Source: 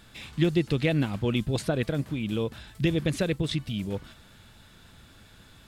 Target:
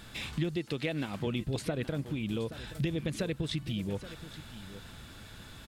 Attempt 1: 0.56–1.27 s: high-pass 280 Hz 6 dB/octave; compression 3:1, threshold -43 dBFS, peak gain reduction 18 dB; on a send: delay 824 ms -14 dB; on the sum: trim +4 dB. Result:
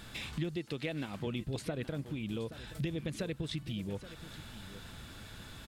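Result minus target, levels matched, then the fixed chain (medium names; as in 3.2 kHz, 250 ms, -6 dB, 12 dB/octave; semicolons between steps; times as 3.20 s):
compression: peak gain reduction +4 dB
0.56–1.27 s: high-pass 280 Hz 6 dB/octave; compression 3:1, threshold -37 dBFS, peak gain reduction 14 dB; on a send: delay 824 ms -14 dB; on the sum: trim +4 dB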